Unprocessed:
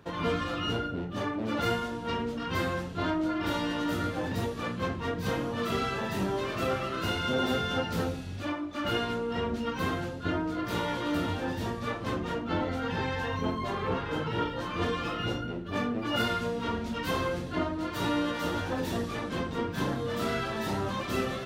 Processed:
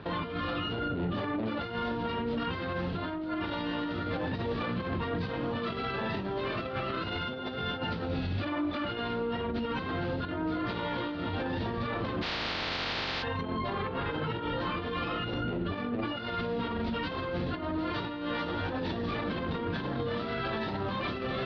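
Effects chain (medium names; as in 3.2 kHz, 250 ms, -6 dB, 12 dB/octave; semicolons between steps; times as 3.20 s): 12.21–13.22 s: spectral contrast reduction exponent 0.11; steep low-pass 4.6 kHz 48 dB/octave; compressor with a negative ratio -34 dBFS, ratio -0.5; peak limiter -31 dBFS, peak gain reduction 11.5 dB; trim +6.5 dB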